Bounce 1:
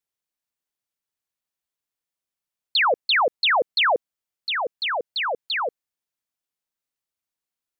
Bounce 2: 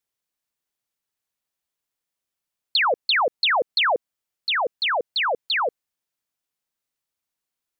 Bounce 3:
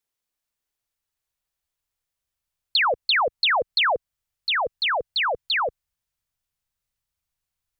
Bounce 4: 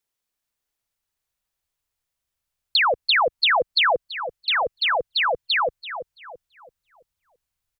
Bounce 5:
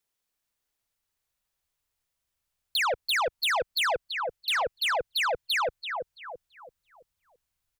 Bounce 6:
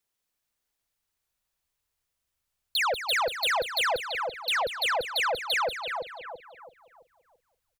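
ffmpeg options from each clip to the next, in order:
-af "acompressor=threshold=-21dB:ratio=6,volume=3dB"
-af "asubboost=boost=11:cutoff=89"
-filter_complex "[0:a]asplit=2[a][b];[b]adelay=334,lowpass=f=1.9k:p=1,volume=-9dB,asplit=2[c][d];[d]adelay=334,lowpass=f=1.9k:p=1,volume=0.42,asplit=2[e][f];[f]adelay=334,lowpass=f=1.9k:p=1,volume=0.42,asplit=2[g][h];[h]adelay=334,lowpass=f=1.9k:p=1,volume=0.42,asplit=2[i][j];[j]adelay=334,lowpass=f=1.9k:p=1,volume=0.42[k];[a][c][e][g][i][k]amix=inputs=6:normalize=0,volume=1.5dB"
-af "asoftclip=type=tanh:threshold=-24dB"
-af "aecho=1:1:190|380|570:0.299|0.0896|0.0269"

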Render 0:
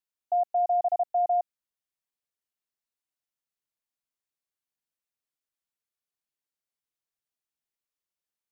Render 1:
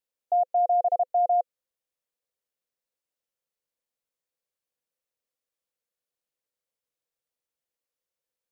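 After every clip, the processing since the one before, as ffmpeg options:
-af "equalizer=f=510:w=3.9:g=14"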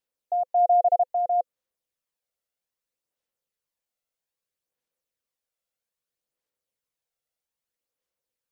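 -af "aphaser=in_gain=1:out_gain=1:delay=1.5:decay=0.35:speed=0.62:type=sinusoidal"

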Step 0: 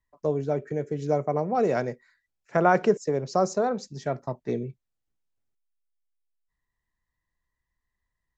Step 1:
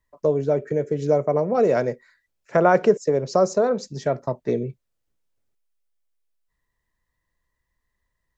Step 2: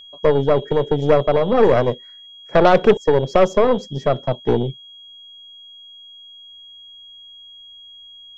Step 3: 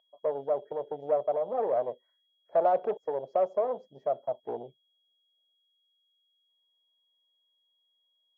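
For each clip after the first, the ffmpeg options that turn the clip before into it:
-filter_complex "[0:a]equalizer=f=530:t=o:w=0.76:g=5,bandreject=f=770:w=12,asplit=2[a][b];[b]acompressor=threshold=-27dB:ratio=6,volume=-1.5dB[c];[a][c]amix=inputs=2:normalize=0"
-af "aeval=exprs='val(0)+0.0158*sin(2*PI*3300*n/s)':c=same,tiltshelf=f=1.5k:g=6,aeval=exprs='1*(cos(1*acos(clip(val(0)/1,-1,1)))-cos(1*PI/2))+0.0501*(cos(5*acos(clip(val(0)/1,-1,1)))-cos(5*PI/2))+0.112*(cos(8*acos(clip(val(0)/1,-1,1)))-cos(8*PI/2))':c=same,volume=-1.5dB"
-af "bandpass=f=670:t=q:w=3.5:csg=0,volume=-7.5dB" -ar 24000 -c:a aac -b:a 96k

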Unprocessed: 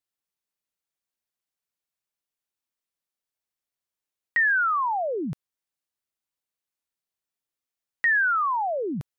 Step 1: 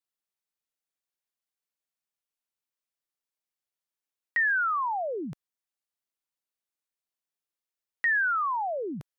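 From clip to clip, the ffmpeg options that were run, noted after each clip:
-af "equalizer=f=81:t=o:w=2.4:g=-6.5,volume=-3.5dB"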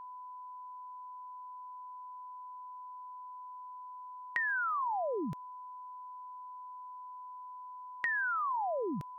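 -af "acompressor=threshold=-32dB:ratio=6,aeval=exprs='val(0)+0.00631*sin(2*PI*1000*n/s)':c=same"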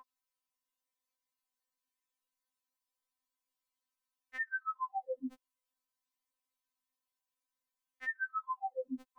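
-filter_complex "[0:a]asplit=2[a][b];[b]acompressor=threshold=-44dB:ratio=6,volume=-1dB[c];[a][c]amix=inputs=2:normalize=0,afftfilt=real='re*3.46*eq(mod(b,12),0)':imag='im*3.46*eq(mod(b,12),0)':win_size=2048:overlap=0.75,volume=-5dB"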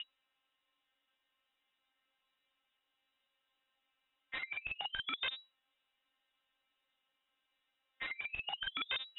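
-filter_complex "[0:a]acrossover=split=190[a][b];[b]acompressor=threshold=-41dB:ratio=6[c];[a][c]amix=inputs=2:normalize=0,aeval=exprs='(mod(168*val(0)+1,2)-1)/168':c=same,lowpass=f=3.3k:t=q:w=0.5098,lowpass=f=3.3k:t=q:w=0.6013,lowpass=f=3.3k:t=q:w=0.9,lowpass=f=3.3k:t=q:w=2.563,afreqshift=-3900,volume=14.5dB"

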